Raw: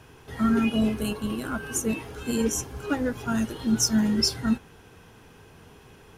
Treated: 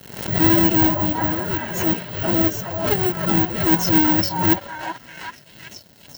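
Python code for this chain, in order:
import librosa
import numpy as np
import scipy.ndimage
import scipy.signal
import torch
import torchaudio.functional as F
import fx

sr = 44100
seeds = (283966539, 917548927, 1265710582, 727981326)

y = fx.halfwave_hold(x, sr)
y = fx.pitch_keep_formants(y, sr, semitones=6.5)
y = scipy.signal.sosfilt(scipy.signal.butter(2, 6000.0, 'lowpass', fs=sr, output='sos'), y)
y = fx.dmg_crackle(y, sr, seeds[0], per_s=430.0, level_db=-41.0)
y = (np.kron(scipy.signal.resample_poly(y, 1, 2), np.eye(2)[0]) * 2)[:len(y)]
y = fx.echo_stepped(y, sr, ms=383, hz=790.0, octaves=0.7, feedback_pct=70, wet_db=0.0)
y = np.sign(y) * np.maximum(np.abs(y) - 10.0 ** (-38.0 / 20.0), 0.0)
y = fx.low_shelf(y, sr, hz=310.0, db=6.5)
y = fx.notch_comb(y, sr, f0_hz=1200.0)
y = fx.pre_swell(y, sr, db_per_s=73.0)
y = y * librosa.db_to_amplitude(-1.0)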